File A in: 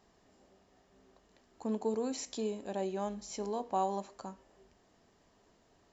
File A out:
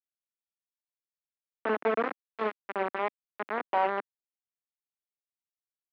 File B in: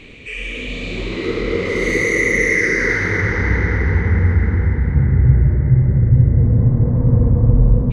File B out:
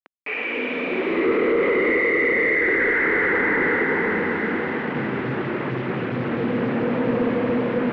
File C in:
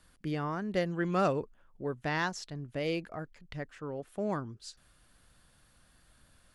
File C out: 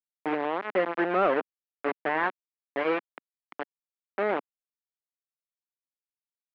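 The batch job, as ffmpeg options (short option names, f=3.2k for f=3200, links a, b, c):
-af "acrusher=bits=4:mix=0:aa=0.000001,highpass=f=260:w=0.5412,highpass=f=260:w=1.3066,alimiter=limit=-13.5dB:level=0:latency=1:release=17,volume=20.5dB,asoftclip=hard,volume=-20.5dB,lowpass=f=2.2k:w=0.5412,lowpass=f=2.2k:w=1.3066,volume=5.5dB"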